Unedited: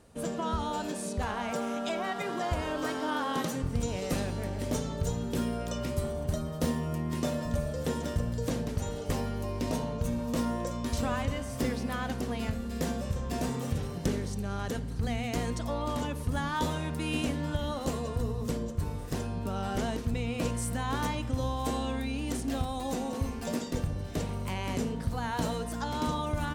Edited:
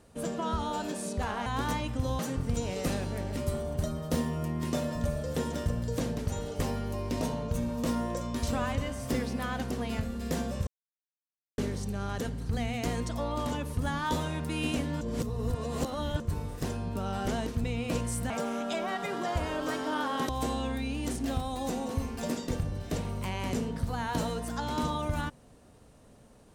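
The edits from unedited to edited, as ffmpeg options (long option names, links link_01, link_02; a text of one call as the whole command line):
ffmpeg -i in.wav -filter_complex "[0:a]asplit=10[link_01][link_02][link_03][link_04][link_05][link_06][link_07][link_08][link_09][link_10];[link_01]atrim=end=1.462[link_11];[link_02]atrim=start=20.798:end=21.532[link_12];[link_03]atrim=start=3.448:end=4.632[link_13];[link_04]atrim=start=5.868:end=13.17,asetpts=PTS-STARTPTS,afade=type=out:start_time=7.298:duration=0.004:curve=hsin[link_14];[link_05]atrim=start=13.17:end=14.08,asetpts=PTS-STARTPTS,volume=0[link_15];[link_06]atrim=start=14.08:end=17.512,asetpts=PTS-STARTPTS,afade=type=in:duration=0.004:curve=hsin[link_16];[link_07]atrim=start=17.508:end=18.702,asetpts=PTS-STARTPTS,areverse[link_17];[link_08]atrim=start=18.698:end=20.802[link_18];[link_09]atrim=start=1.458:end=3.452[link_19];[link_10]atrim=start=21.528[link_20];[link_11][link_12]acrossfade=duration=0.004:curve1=hsin:curve2=hsin[link_21];[link_21][link_13]acrossfade=duration=0.004:curve1=hsin:curve2=hsin[link_22];[link_14][link_15][link_16]concat=n=3:v=0:a=1[link_23];[link_22][link_23]acrossfade=duration=0.004:curve1=hsin:curve2=hsin[link_24];[link_24][link_17]acrossfade=duration=0.004:curve1=hsin:curve2=hsin[link_25];[link_25][link_18]acrossfade=duration=0.004:curve1=hsin:curve2=hsin[link_26];[link_26][link_19]acrossfade=duration=0.004:curve1=hsin:curve2=hsin[link_27];[link_27][link_20]acrossfade=duration=0.004:curve1=hsin:curve2=hsin" out.wav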